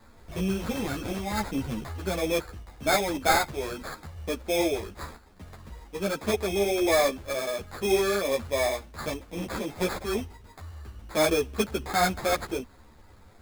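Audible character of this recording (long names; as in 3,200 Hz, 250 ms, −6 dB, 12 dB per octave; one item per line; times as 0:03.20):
aliases and images of a low sample rate 2,900 Hz, jitter 0%
a shimmering, thickened sound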